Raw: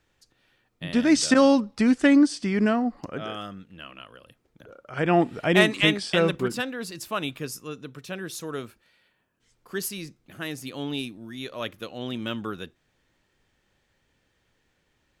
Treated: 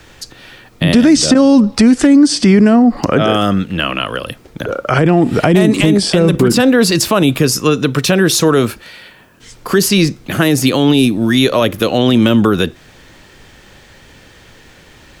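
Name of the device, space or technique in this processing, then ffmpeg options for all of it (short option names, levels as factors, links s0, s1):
mastering chain: -filter_complex "[0:a]equalizer=f=4700:t=o:w=0.77:g=1.5,acrossover=split=350|750|7100[s0][s1][s2][s3];[s0]acompressor=threshold=0.0794:ratio=4[s4];[s1]acompressor=threshold=0.0224:ratio=4[s5];[s2]acompressor=threshold=0.01:ratio=4[s6];[s3]acompressor=threshold=0.00398:ratio=4[s7];[s4][s5][s6][s7]amix=inputs=4:normalize=0,acompressor=threshold=0.0141:ratio=1.5,asoftclip=type=hard:threshold=0.0794,alimiter=level_in=28.2:limit=0.891:release=50:level=0:latency=1,volume=0.891"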